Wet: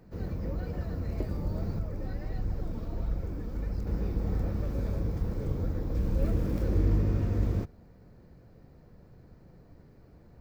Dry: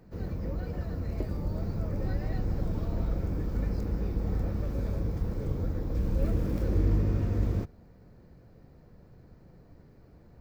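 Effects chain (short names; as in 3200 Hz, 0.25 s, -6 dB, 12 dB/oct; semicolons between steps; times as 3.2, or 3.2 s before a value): 1.79–3.87 flange 1.5 Hz, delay 0.5 ms, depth 4.1 ms, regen +54%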